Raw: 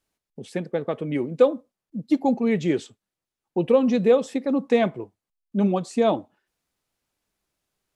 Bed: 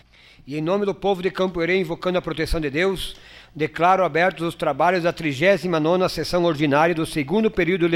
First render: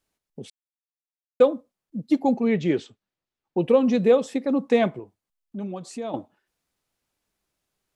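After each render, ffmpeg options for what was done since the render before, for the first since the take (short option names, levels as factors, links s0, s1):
-filter_complex "[0:a]asettb=1/sr,asplit=3[s0][s1][s2];[s0]atrim=end=2.474[s3];[s1]atrim=start=2.47:end=3.59,asetpts=PTS-STARTPTS,afade=t=in:d=0.004:c=qsin,afade=t=out:st=1.116:d=0.004:c=qsin,lowpass=5100[s4];[s2]atrim=start=3.586[s5];[s3][s4]acrossfade=d=0.004:c1=hsin:c2=qsin[s6];[s6][s5]acrossfade=d=0.004:c1=qsin:c2=hsin,asettb=1/sr,asplit=3[s7][s8][s9];[s7]atrim=end=4.994[s10];[s8]atrim=start=4.99:end=6.14,asetpts=PTS-STARTPTS,afade=t=in:d=0.004:c=qsin,afade=t=out:st=1.146:d=0.004:c=qsin,acompressor=threshold=0.0126:ratio=2:attack=3.2:release=140:knee=1:detection=peak[s11];[s9]atrim=start=6.136[s12];[s10][s11]acrossfade=d=0.004:c1=hsin:c2=qsin[s13];[s13][s12]acrossfade=d=0.004:c1=qsin:c2=hsin,asplit=3[s14][s15][s16];[s14]atrim=end=0.5,asetpts=PTS-STARTPTS,afade=t=out:st=0.496:d=0.004:c=hsin[s17];[s15]atrim=start=0.5:end=1.4,asetpts=PTS-STARTPTS,volume=0[s18];[s16]atrim=start=1.4,asetpts=PTS-STARTPTS,afade=t=in:d=0.004:c=hsin[s19];[s17][s18][s19]concat=n=3:v=0:a=1"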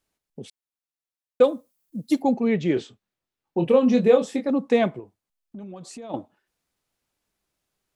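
-filter_complex "[0:a]asplit=3[s0][s1][s2];[s0]afade=t=out:st=1.43:d=0.02[s3];[s1]aemphasis=mode=production:type=75fm,afade=t=in:st=1.43:d=0.02,afade=t=out:st=2.21:d=0.02[s4];[s2]afade=t=in:st=2.21:d=0.02[s5];[s3][s4][s5]amix=inputs=3:normalize=0,asettb=1/sr,asplit=3[s6][s7][s8];[s6]atrim=end=2.744[s9];[s7]atrim=start=2.74:end=4.5,asetpts=PTS-STARTPTS,afade=t=in:d=0.004:c=qsin,afade=t=out:st=1.756:d=0.004:c=qsin,asplit=2[s10][s11];[s11]adelay=24,volume=0.562[s12];[s10][s12]amix=inputs=2:normalize=0,atrim=end_sample=77616[s13];[s8]atrim=start=4.496[s14];[s9][s13]acrossfade=d=0.004:c1=hsin:c2=qsin[s15];[s15][s14]acrossfade=d=0.004:c1=qsin:c2=hsin,asplit=3[s16][s17][s18];[s16]afade=t=out:st=5:d=0.02[s19];[s17]acompressor=threshold=0.0178:ratio=6:attack=3.2:release=140:knee=1:detection=peak,afade=t=in:st=5:d=0.02,afade=t=out:st=6.09:d=0.02[s20];[s18]afade=t=in:st=6.09:d=0.02[s21];[s19][s20][s21]amix=inputs=3:normalize=0"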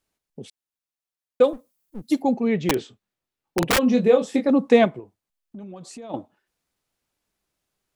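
-filter_complex "[0:a]asettb=1/sr,asplit=3[s0][s1][s2];[s0]atrim=end=1.534[s3];[s1]atrim=start=1.53:end=2.02,asetpts=PTS-STARTPTS,afade=t=in:d=0.004:c=qsin,afade=t=out:st=0.486:d=0.004:c=qsin,aeval=exprs='clip(val(0),-1,0.00398)':c=same[s4];[s2]atrim=start=2.016[s5];[s3][s4]acrossfade=d=0.004:c1=hsin:c2=qsin[s6];[s6][s5]acrossfade=d=0.004:c1=qsin:c2=hsin,asplit=3[s7][s8][s9];[s7]afade=t=out:st=2.58:d=0.02[s10];[s8]aeval=exprs='(mod(5.01*val(0)+1,2)-1)/5.01':c=same,afade=t=in:st=2.58:d=0.02,afade=t=out:st=3.77:d=0.02[s11];[s9]afade=t=in:st=3.77:d=0.02[s12];[s10][s11][s12]amix=inputs=3:normalize=0,asplit=3[s13][s14][s15];[s13]atrim=end=4.342[s16];[s14]atrim=start=4.338:end=4.852,asetpts=PTS-STARTPTS,volume=1.68[s17];[s15]atrim=start=4.848[s18];[s16][s17]acrossfade=d=0.004:c1=hsin:c2=hsin[s19];[s19][s18]acrossfade=d=0.004:c1=hsin:c2=hsin"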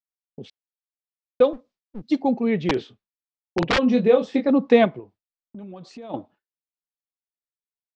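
-af "agate=range=0.0224:threshold=0.00501:ratio=3:detection=peak,lowpass=f=4900:w=0.5412,lowpass=f=4900:w=1.3066"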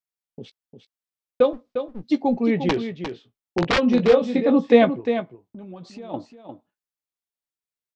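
-filter_complex "[0:a]asplit=2[s0][s1];[s1]adelay=17,volume=0.251[s2];[s0][s2]amix=inputs=2:normalize=0,aecho=1:1:352:0.355"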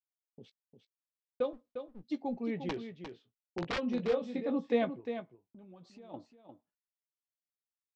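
-af "volume=0.178"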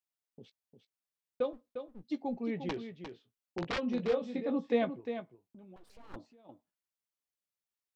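-filter_complex "[0:a]asettb=1/sr,asplit=3[s0][s1][s2];[s0]atrim=end=5.764[s3];[s1]atrim=start=5.76:end=6.16,asetpts=PTS-STARTPTS,afade=t=in:d=0.004:c=qsin,afade=t=out:st=0.396:d=0.004:c=qsin,aeval=exprs='abs(val(0))':c=same[s4];[s2]atrim=start=6.156[s5];[s3][s4]acrossfade=d=0.004:c1=hsin:c2=qsin[s6];[s6][s5]acrossfade=d=0.004:c1=qsin:c2=hsin"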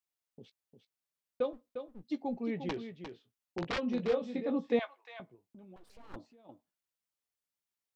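-filter_complex "[0:a]asettb=1/sr,asplit=3[s0][s1][s2];[s0]atrim=end=4.794[s3];[s1]atrim=start=4.79:end=5.2,asetpts=PTS-STARTPTS,afade=t=in:d=0.004:c=qsin,afade=t=out:st=0.406:d=0.004:c=qsin,highpass=f=850:w=0.5412,highpass=f=850:w=1.3066[s4];[s2]atrim=start=5.196[s5];[s3][s4]acrossfade=d=0.004:c1=hsin:c2=qsin[s6];[s6][s5]acrossfade=d=0.004:c1=qsin:c2=hsin"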